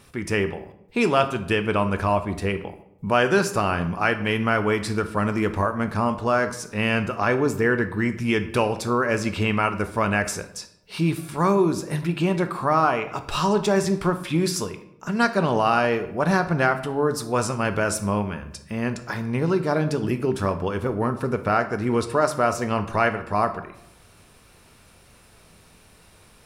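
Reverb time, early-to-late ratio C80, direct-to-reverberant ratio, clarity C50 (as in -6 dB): 0.80 s, 15.5 dB, 8.5 dB, 12.0 dB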